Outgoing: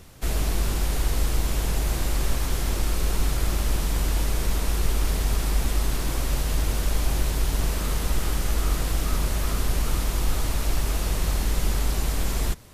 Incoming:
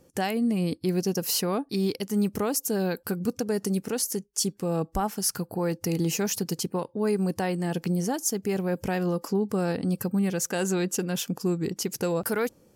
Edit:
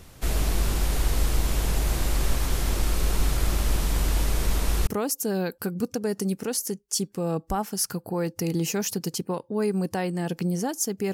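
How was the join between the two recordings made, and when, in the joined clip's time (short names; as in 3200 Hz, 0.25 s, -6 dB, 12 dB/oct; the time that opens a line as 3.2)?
outgoing
4.87 switch to incoming from 2.32 s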